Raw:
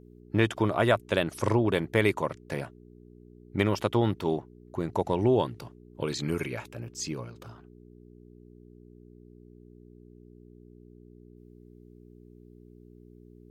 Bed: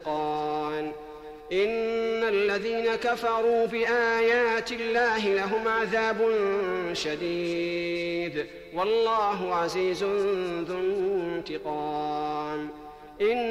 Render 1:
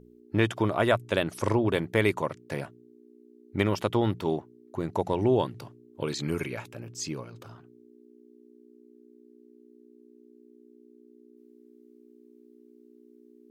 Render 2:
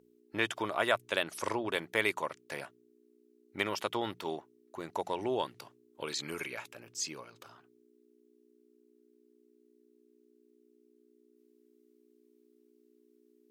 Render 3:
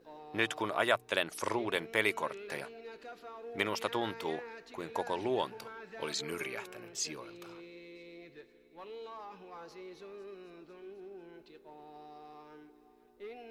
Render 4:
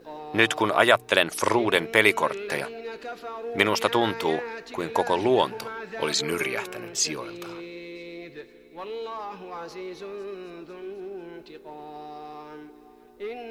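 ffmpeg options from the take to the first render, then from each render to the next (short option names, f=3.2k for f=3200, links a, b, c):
-af "bandreject=f=60:t=h:w=4,bandreject=f=120:t=h:w=4,bandreject=f=180:t=h:w=4"
-af "highpass=f=1.1k:p=1"
-filter_complex "[1:a]volume=-22dB[a];[0:a][a]amix=inputs=2:normalize=0"
-af "volume=11.5dB,alimiter=limit=-3dB:level=0:latency=1"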